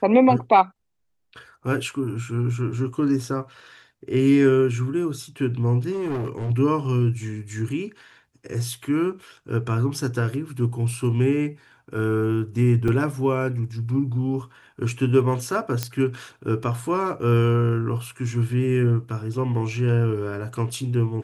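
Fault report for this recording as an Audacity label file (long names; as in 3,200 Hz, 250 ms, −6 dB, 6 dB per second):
5.910000	6.510000	clipping −23.5 dBFS
12.880000	12.880000	drop-out 2.8 ms
15.830000	15.830000	click −8 dBFS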